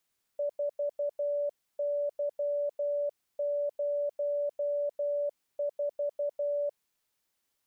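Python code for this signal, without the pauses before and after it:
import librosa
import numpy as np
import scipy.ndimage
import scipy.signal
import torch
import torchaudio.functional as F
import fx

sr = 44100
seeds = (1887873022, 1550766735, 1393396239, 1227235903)

y = fx.morse(sr, text='4Y04', wpm=12, hz=579.0, level_db=-27.5)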